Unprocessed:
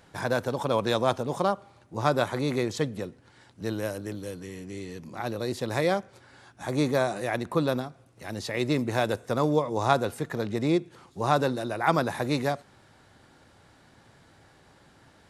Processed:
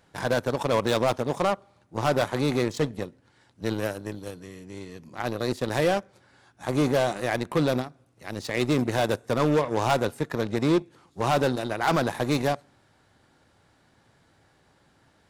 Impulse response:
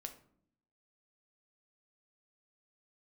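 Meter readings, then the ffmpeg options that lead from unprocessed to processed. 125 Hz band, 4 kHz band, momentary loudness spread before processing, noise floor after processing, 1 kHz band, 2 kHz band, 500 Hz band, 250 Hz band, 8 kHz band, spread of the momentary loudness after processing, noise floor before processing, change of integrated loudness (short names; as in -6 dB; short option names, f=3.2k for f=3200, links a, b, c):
+1.5 dB, +2.0 dB, 14 LU, -63 dBFS, +0.5 dB, +1.5 dB, +2.0 dB, +2.0 dB, +2.5 dB, 15 LU, -58 dBFS, +2.0 dB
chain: -filter_complex "[0:a]volume=19dB,asoftclip=hard,volume=-19dB,asplit=2[a][b];[1:a]atrim=start_sample=2205[c];[b][c]afir=irnorm=-1:irlink=0,volume=-11.5dB[d];[a][d]amix=inputs=2:normalize=0,aeval=exprs='0.15*(cos(1*acos(clip(val(0)/0.15,-1,1)))-cos(1*PI/2))+0.0133*(cos(7*acos(clip(val(0)/0.15,-1,1)))-cos(7*PI/2))':c=same,volume=2dB"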